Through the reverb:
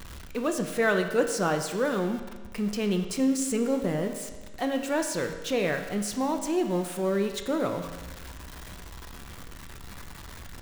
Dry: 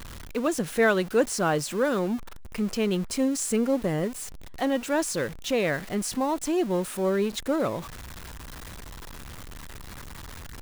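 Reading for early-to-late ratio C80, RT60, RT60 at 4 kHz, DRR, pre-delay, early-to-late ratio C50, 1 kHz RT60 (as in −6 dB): 9.5 dB, 1.3 s, 1.2 s, 5.0 dB, 5 ms, 8.0 dB, 1.3 s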